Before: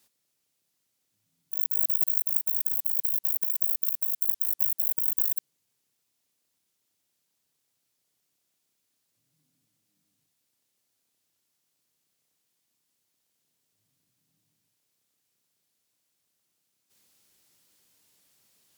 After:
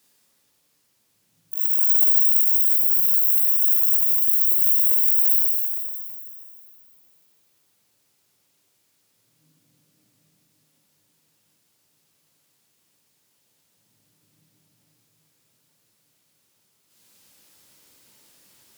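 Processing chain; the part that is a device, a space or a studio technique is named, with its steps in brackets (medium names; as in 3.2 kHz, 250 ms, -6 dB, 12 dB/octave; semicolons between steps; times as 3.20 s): shimmer-style reverb (harmony voices +12 st -10 dB; reverberation RT60 5.4 s, pre-delay 31 ms, DRR -9 dB); 1.59–2.27 s: peaking EQ 1.4 kHz -6 dB 0.85 oct; trim +2 dB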